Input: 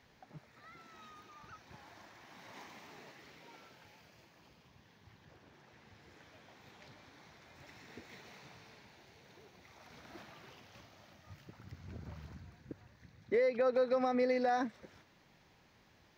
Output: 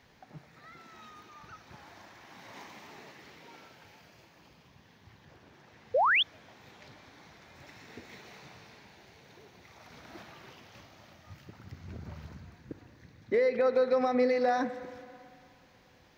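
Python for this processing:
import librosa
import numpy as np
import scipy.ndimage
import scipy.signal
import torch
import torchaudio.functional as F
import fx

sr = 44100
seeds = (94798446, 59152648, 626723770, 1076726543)

y = fx.rev_spring(x, sr, rt60_s=2.6, pass_ms=(36, 56), chirp_ms=45, drr_db=11.5)
y = fx.spec_paint(y, sr, seeds[0], shape='rise', start_s=5.94, length_s=0.29, low_hz=460.0, high_hz=3700.0, level_db=-28.0)
y = y * 10.0 ** (4.0 / 20.0)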